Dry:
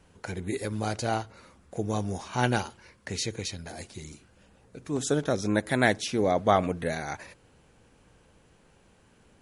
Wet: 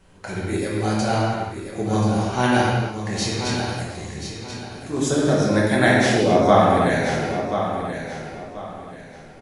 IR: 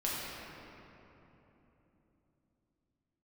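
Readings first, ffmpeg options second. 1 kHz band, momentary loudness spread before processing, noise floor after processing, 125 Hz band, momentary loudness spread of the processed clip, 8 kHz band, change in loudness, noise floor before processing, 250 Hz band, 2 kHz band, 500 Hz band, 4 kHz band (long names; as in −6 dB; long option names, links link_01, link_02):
+9.0 dB, 17 LU, −42 dBFS, +10.0 dB, 17 LU, +6.0 dB, +8.0 dB, −61 dBFS, +10.0 dB, +8.5 dB, +9.0 dB, +8.0 dB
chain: -filter_complex "[0:a]aecho=1:1:1033|2066|3099:0.355|0.103|0.0298[link_01];[1:a]atrim=start_sample=2205,afade=type=out:start_time=0.38:duration=0.01,atrim=end_sample=17199[link_02];[link_01][link_02]afir=irnorm=-1:irlink=0,volume=3dB"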